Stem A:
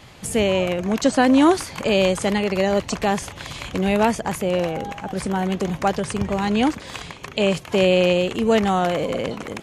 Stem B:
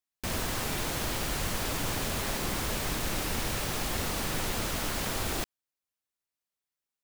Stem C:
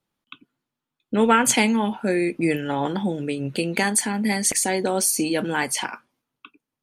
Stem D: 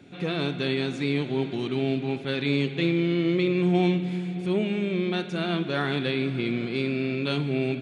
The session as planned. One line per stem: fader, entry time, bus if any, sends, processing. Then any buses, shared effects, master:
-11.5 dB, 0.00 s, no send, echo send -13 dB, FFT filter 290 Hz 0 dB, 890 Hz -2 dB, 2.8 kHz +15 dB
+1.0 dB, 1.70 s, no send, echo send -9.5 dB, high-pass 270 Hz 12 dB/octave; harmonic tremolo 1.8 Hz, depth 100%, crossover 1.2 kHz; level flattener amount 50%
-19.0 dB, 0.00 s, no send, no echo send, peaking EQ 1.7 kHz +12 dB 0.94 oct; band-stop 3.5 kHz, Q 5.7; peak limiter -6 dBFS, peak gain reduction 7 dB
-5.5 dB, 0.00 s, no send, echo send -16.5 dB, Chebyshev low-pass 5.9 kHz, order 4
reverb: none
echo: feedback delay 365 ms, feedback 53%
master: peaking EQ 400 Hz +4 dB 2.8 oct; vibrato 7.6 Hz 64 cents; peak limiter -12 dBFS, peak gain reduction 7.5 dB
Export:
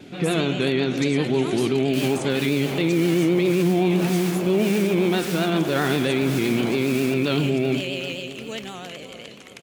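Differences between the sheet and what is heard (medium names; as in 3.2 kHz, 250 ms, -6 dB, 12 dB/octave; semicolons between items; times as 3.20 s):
stem A -11.5 dB -> -20.5 dB; stem C: muted; stem D -5.5 dB -> +5.5 dB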